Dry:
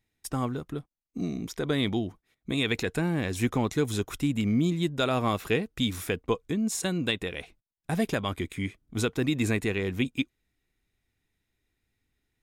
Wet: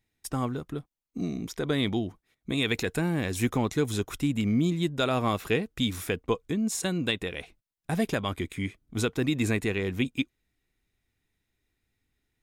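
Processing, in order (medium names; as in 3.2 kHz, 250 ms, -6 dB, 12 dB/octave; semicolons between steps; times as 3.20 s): 2.62–3.57 s: treble shelf 8.8 kHz +6 dB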